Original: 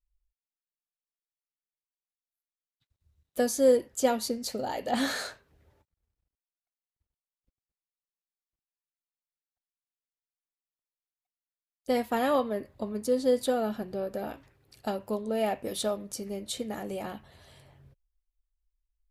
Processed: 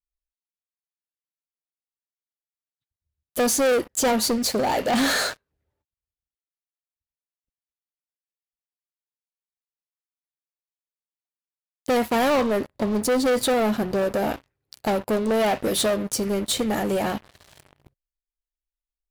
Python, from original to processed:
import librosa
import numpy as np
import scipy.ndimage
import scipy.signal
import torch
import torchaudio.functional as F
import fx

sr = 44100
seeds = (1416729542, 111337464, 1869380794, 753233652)

y = fx.leveller(x, sr, passes=5)
y = y * librosa.db_to_amplitude(-4.5)